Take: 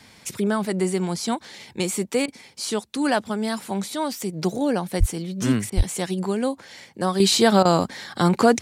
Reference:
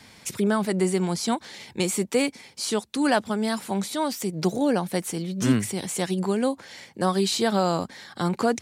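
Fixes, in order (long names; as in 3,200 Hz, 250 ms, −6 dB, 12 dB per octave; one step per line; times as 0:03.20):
high-pass at the plosives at 0:04.99/0:05.76
repair the gap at 0:02.26/0:05.70/0:07.63, 20 ms
level correction −6.5 dB, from 0:07.20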